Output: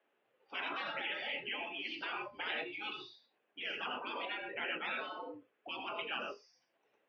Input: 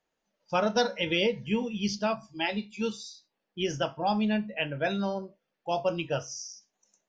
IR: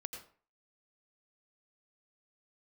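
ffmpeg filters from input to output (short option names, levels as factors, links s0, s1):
-filter_complex "[0:a]asplit=2[s0][s1];[1:a]atrim=start_sample=2205,atrim=end_sample=6174[s2];[s1][s2]afir=irnorm=-1:irlink=0,volume=1.78[s3];[s0][s3]amix=inputs=2:normalize=0,afftfilt=real='re*lt(hypot(re,im),0.1)':imag='im*lt(hypot(re,im),0.1)':win_size=1024:overlap=0.75,highpass=f=360:t=q:w=0.5412,highpass=f=360:t=q:w=1.307,lowpass=f=3200:t=q:w=0.5176,lowpass=f=3200:t=q:w=0.7071,lowpass=f=3200:t=q:w=1.932,afreqshift=-80,volume=0.841"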